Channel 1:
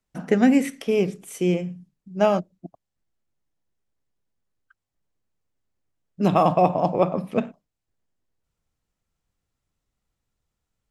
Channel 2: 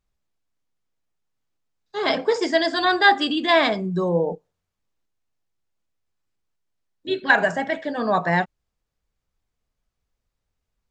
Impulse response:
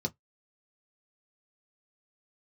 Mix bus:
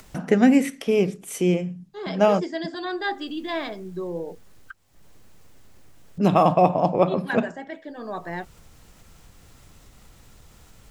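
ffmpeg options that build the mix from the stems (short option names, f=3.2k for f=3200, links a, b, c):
-filter_complex "[0:a]acompressor=mode=upward:threshold=-27dB:ratio=2.5,volume=1dB[a];[1:a]equalizer=f=350:t=o:w=0.59:g=8.5,volume=-13dB[b];[a][b]amix=inputs=2:normalize=0"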